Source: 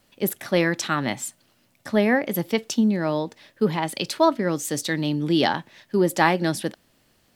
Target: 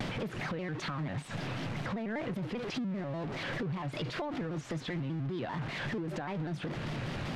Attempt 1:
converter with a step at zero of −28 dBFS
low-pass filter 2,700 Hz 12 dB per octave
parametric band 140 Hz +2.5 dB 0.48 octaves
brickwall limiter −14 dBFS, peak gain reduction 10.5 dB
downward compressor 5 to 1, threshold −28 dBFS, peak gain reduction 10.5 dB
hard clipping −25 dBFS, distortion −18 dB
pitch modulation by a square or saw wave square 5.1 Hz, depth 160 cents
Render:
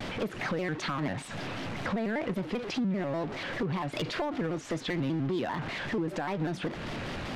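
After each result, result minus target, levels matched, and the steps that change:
downward compressor: peak gain reduction −6 dB; converter with a step at zero: distortion −6 dB; 125 Hz band −3.5 dB
change: downward compressor 5 to 1, threshold −35.5 dBFS, peak gain reduction 16.5 dB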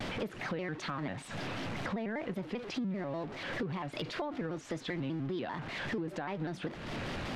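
converter with a step at zero: distortion −6 dB; 125 Hz band −3.5 dB
change: converter with a step at zero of −20.5 dBFS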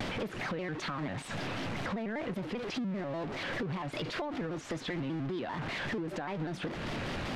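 125 Hz band −3.5 dB
change: parametric band 140 Hz +12.5 dB 0.48 octaves

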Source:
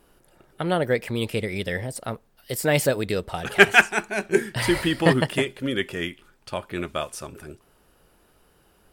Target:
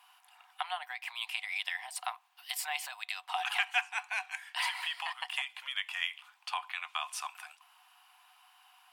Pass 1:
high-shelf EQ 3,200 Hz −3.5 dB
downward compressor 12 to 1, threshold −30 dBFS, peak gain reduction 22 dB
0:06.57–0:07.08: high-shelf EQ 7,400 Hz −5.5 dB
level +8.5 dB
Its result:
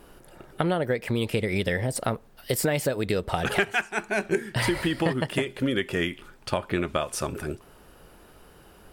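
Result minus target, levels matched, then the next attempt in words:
1,000 Hz band −3.0 dB
high-shelf EQ 3,200 Hz −3.5 dB
downward compressor 12 to 1, threshold −30 dBFS, peak gain reduction 22 dB
Chebyshev high-pass with heavy ripple 720 Hz, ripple 9 dB
0:06.57–0:07.08: high-shelf EQ 7,400 Hz −5.5 dB
level +8.5 dB

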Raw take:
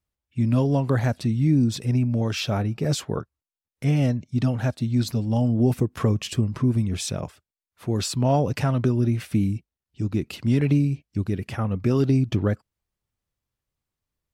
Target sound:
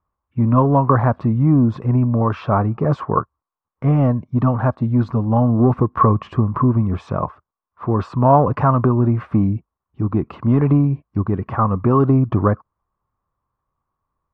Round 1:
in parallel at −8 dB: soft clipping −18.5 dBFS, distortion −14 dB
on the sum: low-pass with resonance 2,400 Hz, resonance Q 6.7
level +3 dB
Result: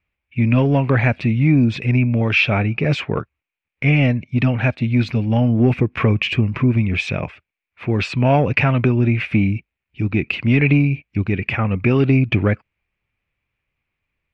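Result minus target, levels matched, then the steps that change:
2,000 Hz band +15.0 dB
change: low-pass with resonance 1,100 Hz, resonance Q 6.7

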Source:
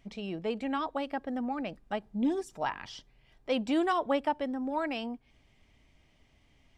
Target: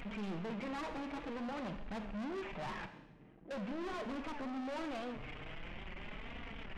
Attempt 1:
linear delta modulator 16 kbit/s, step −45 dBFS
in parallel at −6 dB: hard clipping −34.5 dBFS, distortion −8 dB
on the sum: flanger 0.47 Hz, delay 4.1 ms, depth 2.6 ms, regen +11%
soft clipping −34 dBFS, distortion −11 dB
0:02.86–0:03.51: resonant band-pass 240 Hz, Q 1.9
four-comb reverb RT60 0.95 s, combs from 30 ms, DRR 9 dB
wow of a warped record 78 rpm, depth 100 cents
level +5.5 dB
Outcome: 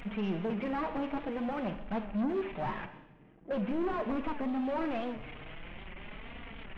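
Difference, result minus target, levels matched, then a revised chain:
soft clipping: distortion −7 dB
linear delta modulator 16 kbit/s, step −45 dBFS
in parallel at −6 dB: hard clipping −34.5 dBFS, distortion −8 dB
on the sum: flanger 0.47 Hz, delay 4.1 ms, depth 2.6 ms, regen +11%
soft clipping −45.5 dBFS, distortion −3 dB
0:02.86–0:03.51: resonant band-pass 240 Hz, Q 1.9
four-comb reverb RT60 0.95 s, combs from 30 ms, DRR 9 dB
wow of a warped record 78 rpm, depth 100 cents
level +5.5 dB

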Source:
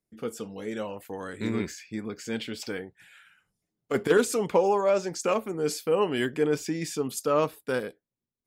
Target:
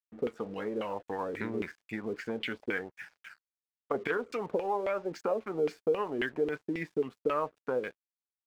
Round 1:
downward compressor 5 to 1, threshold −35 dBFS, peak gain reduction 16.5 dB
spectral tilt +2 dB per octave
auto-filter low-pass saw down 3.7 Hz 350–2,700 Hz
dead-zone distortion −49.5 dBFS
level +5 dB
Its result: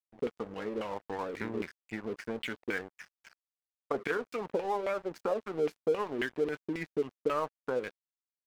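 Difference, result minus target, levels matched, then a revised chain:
dead-zone distortion: distortion +10 dB
downward compressor 5 to 1, threshold −35 dBFS, peak gain reduction 16.5 dB
spectral tilt +2 dB per octave
auto-filter low-pass saw down 3.7 Hz 350–2,700 Hz
dead-zone distortion −61 dBFS
level +5 dB

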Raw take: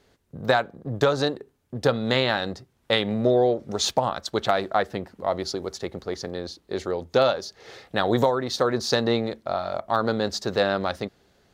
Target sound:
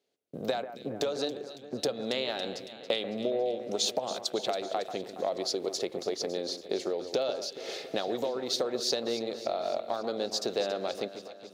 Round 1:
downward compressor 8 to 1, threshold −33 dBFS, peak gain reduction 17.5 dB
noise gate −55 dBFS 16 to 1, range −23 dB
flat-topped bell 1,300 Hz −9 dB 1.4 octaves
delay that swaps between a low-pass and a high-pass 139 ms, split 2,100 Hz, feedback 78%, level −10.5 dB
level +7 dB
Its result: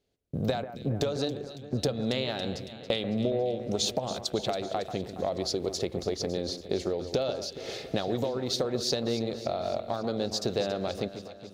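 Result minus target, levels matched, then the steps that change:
250 Hz band +4.0 dB
add after noise gate: high-pass filter 320 Hz 12 dB per octave

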